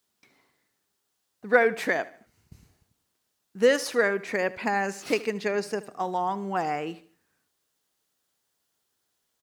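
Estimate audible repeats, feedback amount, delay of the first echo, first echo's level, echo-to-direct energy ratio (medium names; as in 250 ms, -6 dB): 3, 41%, 76 ms, -18.5 dB, -17.5 dB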